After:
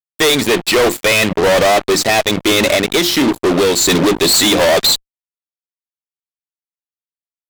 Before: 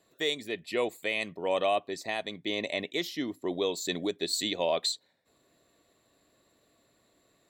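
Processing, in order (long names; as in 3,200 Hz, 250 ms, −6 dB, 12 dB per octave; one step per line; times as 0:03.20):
mains-hum notches 50/100/150/200/250/300/350 Hz
0:02.74–0:03.88: downward compressor, threshold −33 dBFS, peak gain reduction 8.5 dB
fuzz pedal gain 44 dB, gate −48 dBFS
level +3.5 dB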